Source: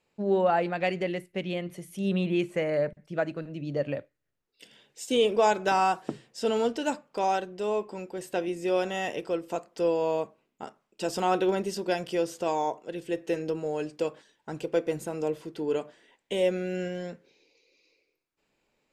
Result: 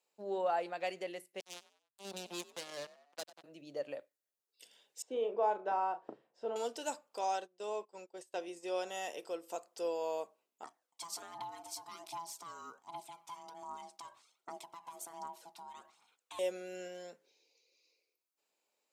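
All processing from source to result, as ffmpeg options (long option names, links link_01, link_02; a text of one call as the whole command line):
ffmpeg -i in.wav -filter_complex "[0:a]asettb=1/sr,asplit=3[link_01][link_02][link_03];[link_01]atrim=end=1.404[link_04];[link_02]atrim=start=1.4:end=3.44,asetpts=PTS-STARTPTS,afade=type=in:duration=0.004:curve=qsin,afade=type=out:start_time=2.036:duration=0.004:curve=qsin,acrusher=bits=3:mix=0:aa=0.5,asplit=4[link_05][link_06][link_07][link_08];[link_06]adelay=95,afreqshift=45,volume=-20.5dB[link_09];[link_07]adelay=190,afreqshift=90,volume=-29.9dB[link_10];[link_08]adelay=285,afreqshift=135,volume=-39.2dB[link_11];[link_05][link_09][link_10][link_11]amix=inputs=4:normalize=0,atrim=end_sample=89964,acrossover=split=320|3000[link_12][link_13][link_14];[link_13]acompressor=threshold=-54dB:ratio=1.5:attack=3.2:release=140:knee=2.83:detection=peak[link_15];[link_12][link_15][link_14]amix=inputs=3:normalize=0[link_16];[link_03]atrim=start=3.436[link_17];[link_04][link_16]acrossfade=duration=0.004:curve1=hsin:curve2=qsin[link_18];[link_18][link_17]acrossfade=duration=0.004:curve1=qsin:curve2=hsin,asettb=1/sr,asplit=3[link_19][link_20][link_21];[link_19]atrim=end=5.024[link_22];[link_20]atrim=start=5.02:end=6.56,asetpts=PTS-STARTPTS,afade=type=in:duration=0.004:curve=qsin,afade=type=out:start_time=1.536:duration=0.004:curve=qsin,lowpass=1300,asplit=2[link_23][link_24];[link_24]adelay=35,volume=-9dB[link_25];[link_23][link_25]amix=inputs=2:normalize=0,atrim=end_sample=67914[link_26];[link_21]atrim=start=6.556[link_27];[link_22][link_26]acrossfade=duration=0.004:curve1=hsin:curve2=qsin[link_28];[link_28][link_27]acrossfade=duration=0.004:curve1=qsin:curve2=hsin,asettb=1/sr,asplit=3[link_29][link_30][link_31];[link_29]atrim=end=7.214[link_32];[link_30]atrim=start=7.21:end=8.87,asetpts=PTS-STARTPTS,afade=type=in:duration=0.004:curve=qsin,afade=type=out:start_time=1.656:duration=0.004:curve=qsin,agate=range=-18dB:threshold=-39dB:ratio=16:release=100:detection=peak,lowpass=8300[link_33];[link_31]atrim=start=8.866[link_34];[link_32][link_33]acrossfade=duration=0.004:curve1=hsin:curve2=qsin[link_35];[link_35][link_34]acrossfade=duration=0.004:curve1=qsin:curve2=hsin,asettb=1/sr,asplit=3[link_36][link_37][link_38];[link_36]atrim=end=10.644[link_39];[link_37]atrim=start=10.64:end=16.39,asetpts=PTS-STARTPTS,afade=type=in:duration=0.004:curve=qsin,afade=type=out:start_time=5.746:duration=0.004:curve=qsin,acompressor=threshold=-31dB:ratio=6:attack=3.2:release=140:knee=1:detection=peak,aphaser=in_gain=1:out_gain=1:delay=1.9:decay=0.55:speed=1.3:type=triangular,aeval=exprs='val(0)*sin(2*PI*500*n/s)':channel_layout=same[link_40];[link_38]atrim=start=16.386[link_41];[link_39][link_40]acrossfade=duration=0.004:curve1=hsin:curve2=qsin[link_42];[link_42][link_41]acrossfade=duration=0.004:curve1=qsin:curve2=hsin,highpass=820,equalizer=frequency=1900:width_type=o:width=2.5:gain=-14.5,volume=2.5dB" out.wav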